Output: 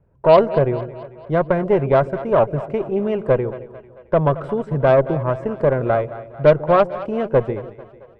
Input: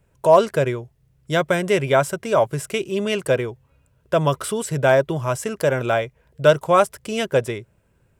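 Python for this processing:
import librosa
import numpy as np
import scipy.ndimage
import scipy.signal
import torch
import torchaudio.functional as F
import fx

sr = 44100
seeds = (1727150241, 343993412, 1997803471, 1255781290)

p1 = scipy.signal.sosfilt(scipy.signal.butter(2, 1000.0, 'lowpass', fs=sr, output='sos'), x)
p2 = fx.cheby_harmonics(p1, sr, harmonics=(6,), levels_db=(-23,), full_scale_db=-3.5)
p3 = p2 + fx.echo_split(p2, sr, split_hz=520.0, low_ms=149, high_ms=222, feedback_pct=52, wet_db=-14.5, dry=0)
y = p3 * 10.0 ** (2.5 / 20.0)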